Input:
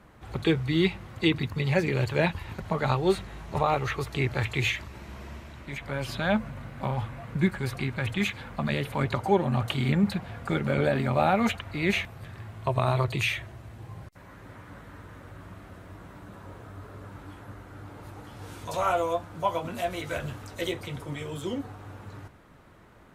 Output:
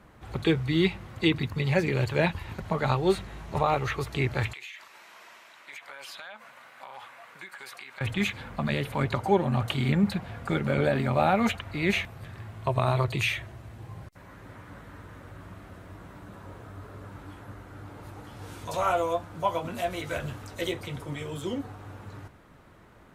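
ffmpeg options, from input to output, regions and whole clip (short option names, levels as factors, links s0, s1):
-filter_complex "[0:a]asettb=1/sr,asplit=3[s0][s1][s2];[s0]atrim=end=4.534[s3];[s1]atrim=start=4.53:end=8.01,asetpts=PTS-STARTPTS,afade=t=in:d=0.004:c=qsin,afade=t=out:st=3.476:d=0.004:c=qsin,highpass=910,acompressor=threshold=0.0126:ratio=16:attack=3.2:release=140:knee=1:detection=peak[s4];[s2]atrim=start=8.006[s5];[s3][s4]acrossfade=d=0.004:c1=hsin:c2=qsin[s6];[s6][s5]acrossfade=d=0.004:c1=qsin:c2=hsin"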